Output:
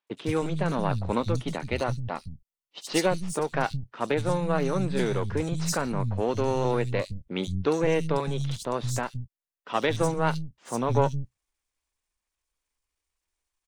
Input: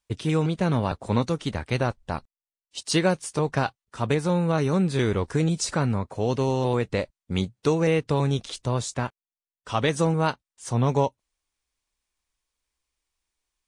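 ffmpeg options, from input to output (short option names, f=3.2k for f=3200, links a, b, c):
-filter_complex "[0:a]aeval=exprs='if(lt(val(0),0),0.447*val(0),val(0))':c=same,asettb=1/sr,asplit=3[a][b][c];[a]atrim=end=1.184[d];[b]atrim=start=1.18:end=3.38,asetpts=PTS-STARTPTS,afade=t=in:d=0.004:c=qsin,afade=t=out:st=2.196:d=0.004:c=qsin,bandreject=f=1.6k:w=9.8[e];[c]atrim=start=3.376[f];[d][e]acrossfade=d=0.004:c1=hsin:c2=qsin[g];[g][f]acrossfade=d=0.004:c1=qsin:c2=hsin,acrossover=split=180|4000[h][i][j];[j]adelay=70[k];[h]adelay=170[l];[l][i][k]amix=inputs=3:normalize=0,volume=1dB"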